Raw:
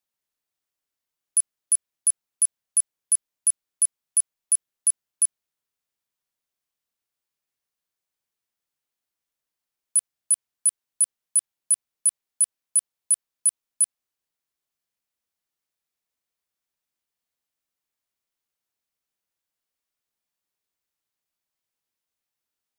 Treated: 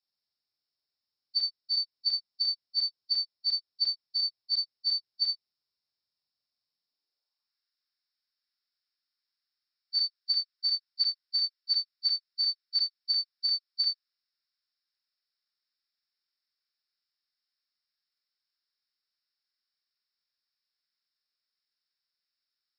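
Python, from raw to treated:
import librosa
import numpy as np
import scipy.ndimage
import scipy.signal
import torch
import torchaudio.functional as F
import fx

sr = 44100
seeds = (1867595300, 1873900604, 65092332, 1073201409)

y = fx.freq_compress(x, sr, knee_hz=3500.0, ratio=4.0)
y = fx.filter_sweep_highpass(y, sr, from_hz=92.0, to_hz=1500.0, start_s=6.6, end_s=7.57, q=2.0)
y = fx.room_early_taps(y, sr, ms=(25, 53, 73), db=(-6.0, -7.5, -10.0))
y = y * librosa.db_to_amplitude(-8.5)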